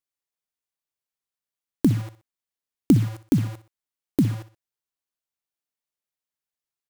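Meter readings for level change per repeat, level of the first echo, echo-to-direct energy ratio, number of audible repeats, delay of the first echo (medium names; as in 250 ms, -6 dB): -8.5 dB, -15.0 dB, -14.5 dB, 2, 62 ms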